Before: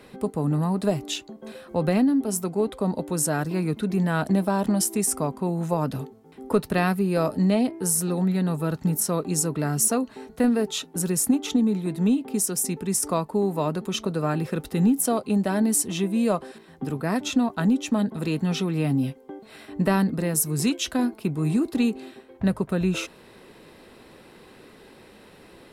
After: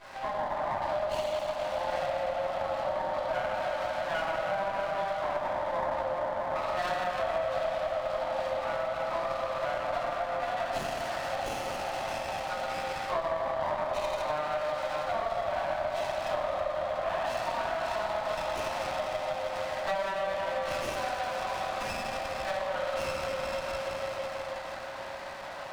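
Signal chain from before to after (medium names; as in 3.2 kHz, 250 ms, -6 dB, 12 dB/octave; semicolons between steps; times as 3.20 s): delay with an opening low-pass 162 ms, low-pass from 750 Hz, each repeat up 1 oct, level -6 dB; FFT band-pass 520–4300 Hz; reverberation RT60 3.3 s, pre-delay 3 ms, DRR -18 dB; compression 6:1, threshold -25 dBFS, peak gain reduction 19 dB; sliding maximum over 9 samples; trim -4 dB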